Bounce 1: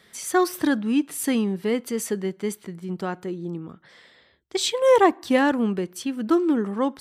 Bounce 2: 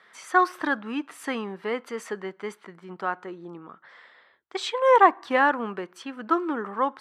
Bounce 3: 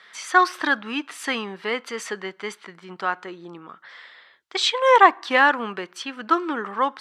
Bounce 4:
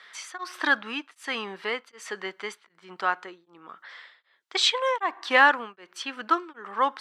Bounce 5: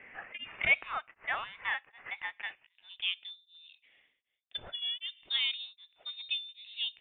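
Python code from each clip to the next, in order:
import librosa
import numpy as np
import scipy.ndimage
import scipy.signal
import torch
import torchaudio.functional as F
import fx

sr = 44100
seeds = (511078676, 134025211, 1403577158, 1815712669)

y1 = fx.bandpass_q(x, sr, hz=1200.0, q=1.5)
y1 = y1 * 10.0 ** (6.5 / 20.0)
y2 = fx.peak_eq(y1, sr, hz=4200.0, db=11.5, octaves=2.7)
y3 = fx.highpass(y2, sr, hz=390.0, slope=6)
y3 = y3 * np.abs(np.cos(np.pi * 1.3 * np.arange(len(y3)) / sr))
y4 = fx.filter_sweep_bandpass(y3, sr, from_hz=2300.0, to_hz=240.0, start_s=2.31, end_s=3.39, q=1.4)
y4 = fx.freq_invert(y4, sr, carrier_hz=3900)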